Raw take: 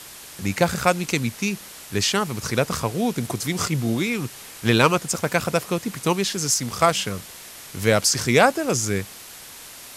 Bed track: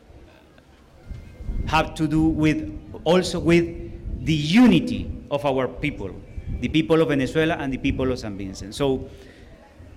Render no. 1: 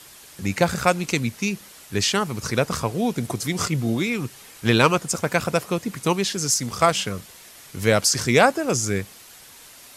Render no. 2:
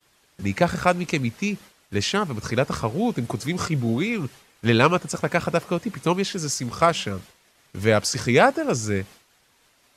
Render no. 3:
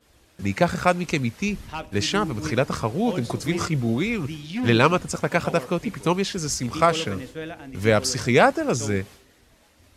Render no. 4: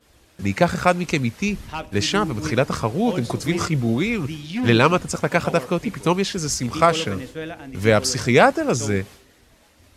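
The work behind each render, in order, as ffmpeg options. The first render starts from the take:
ffmpeg -i in.wav -af "afftdn=noise_reduction=6:noise_floor=-41" out.wav
ffmpeg -i in.wav -af "agate=range=-33dB:threshold=-37dB:ratio=3:detection=peak,lowpass=frequency=3400:poles=1" out.wav
ffmpeg -i in.wav -i bed.wav -filter_complex "[1:a]volume=-13.5dB[link_01];[0:a][link_01]amix=inputs=2:normalize=0" out.wav
ffmpeg -i in.wav -af "volume=2.5dB,alimiter=limit=-1dB:level=0:latency=1" out.wav

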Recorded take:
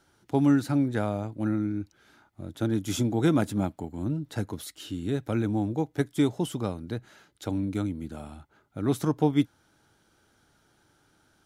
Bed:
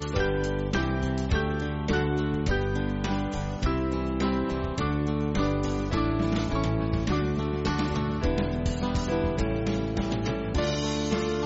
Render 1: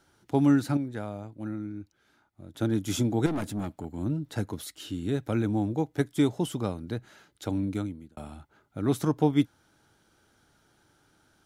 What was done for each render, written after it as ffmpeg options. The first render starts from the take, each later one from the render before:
ffmpeg -i in.wav -filter_complex "[0:a]asettb=1/sr,asplit=3[link_01][link_02][link_03];[link_01]atrim=end=3.264[link_04];[link_02]atrim=start=3.26:end=3.85,asetpts=PTS-STARTPTS,afade=type=in:duration=0.004:curve=qsin,afade=type=out:start_time=0.586:duration=0.004:curve=qsin,aeval=exprs='(tanh(22.4*val(0)+0.25)-tanh(0.25))/22.4':channel_layout=same[link_05];[link_03]atrim=start=3.846[link_06];[link_04][link_05]acrossfade=duration=0.004:curve1=hsin:curve2=qsin[link_07];[link_07][link_06]acrossfade=duration=0.004:curve1=qsin:curve2=hsin,asplit=4[link_08][link_09][link_10][link_11];[link_08]atrim=end=0.772[link_12];[link_09]atrim=start=0.768:end=2.542,asetpts=PTS-STARTPTS,volume=-7.5dB[link_13];[link_10]atrim=start=2.538:end=8.17,asetpts=PTS-STARTPTS,afade=type=out:start_time=5.162:duration=0.47[link_14];[link_11]atrim=start=8.17,asetpts=PTS-STARTPTS,afade=type=in:duration=0.004:curve=hsin[link_15];[link_12][link_13]acrossfade=duration=0.004:curve1=hsin:curve2=hsin[link_16];[link_14][link_15]concat=n=2:v=0:a=1[link_17];[link_16][link_17]acrossfade=duration=0.004:curve1=hsin:curve2=hsin" out.wav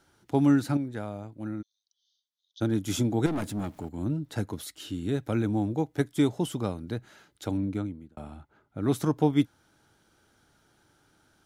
ffmpeg -i in.wav -filter_complex "[0:a]asplit=3[link_01][link_02][link_03];[link_01]afade=type=out:start_time=1.61:duration=0.02[link_04];[link_02]asuperpass=centerf=4500:order=20:qfactor=1.3,afade=type=in:start_time=1.61:duration=0.02,afade=type=out:start_time=2.6:duration=0.02[link_05];[link_03]afade=type=in:start_time=2.6:duration=0.02[link_06];[link_04][link_05][link_06]amix=inputs=3:normalize=0,asettb=1/sr,asplit=3[link_07][link_08][link_09];[link_07]atrim=end=3.324[link_10];[link_08]atrim=start=3.32:end=3.89,asetpts=PTS-STARTPTS,afade=type=in:duration=0.004:curve=qsin,afade=type=out:start_time=0.566:duration=0.004:curve=qsin,aeval=exprs='val(0)+0.5*0.00251*sgn(val(0))':channel_layout=same[link_11];[link_09]atrim=start=3.886[link_12];[link_10][link_11]acrossfade=duration=0.004:curve1=hsin:curve2=qsin[link_13];[link_13][link_12]acrossfade=duration=0.004:curve1=qsin:curve2=hsin,asettb=1/sr,asplit=3[link_14][link_15][link_16];[link_14]atrim=end=7.574[link_17];[link_15]atrim=start=7.57:end=8.82,asetpts=PTS-STARTPTS,afade=type=in:duration=0.004:curve=qsin,afade=type=out:start_time=1.246:duration=0.004:curve=qsin,highshelf=frequency=3400:gain=-9.5[link_18];[link_16]atrim=start=8.816[link_19];[link_17][link_18]acrossfade=duration=0.004:curve1=hsin:curve2=qsin[link_20];[link_20][link_19]acrossfade=duration=0.004:curve1=qsin:curve2=hsin" out.wav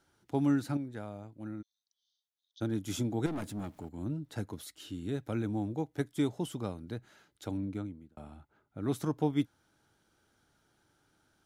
ffmpeg -i in.wav -af "volume=-6.5dB" out.wav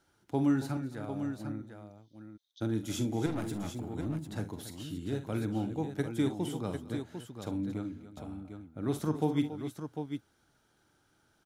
ffmpeg -i in.wav -af "aecho=1:1:45|65|214|278|749:0.299|0.158|0.1|0.224|0.398" out.wav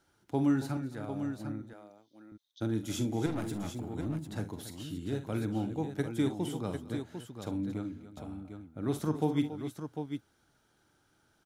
ffmpeg -i in.wav -filter_complex "[0:a]asettb=1/sr,asplit=3[link_01][link_02][link_03];[link_01]atrim=end=1.734[link_04];[link_02]atrim=start=1.73:end=2.32,asetpts=PTS-STARTPTS,afade=type=in:duration=0.004:curve=qsin,afade=type=out:start_time=0.586:duration=0.004:curve=qsin,highpass=310[link_05];[link_03]atrim=start=2.316[link_06];[link_04][link_05]acrossfade=duration=0.004:curve1=hsin:curve2=qsin[link_07];[link_07][link_06]acrossfade=duration=0.004:curve1=qsin:curve2=hsin" out.wav

